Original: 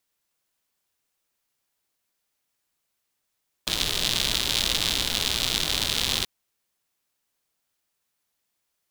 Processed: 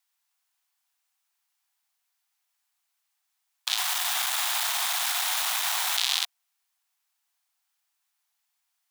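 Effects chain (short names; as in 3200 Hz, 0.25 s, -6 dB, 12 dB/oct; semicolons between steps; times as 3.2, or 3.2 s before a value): 3.78–5.97 infinite clipping; steep high-pass 690 Hz 96 dB/oct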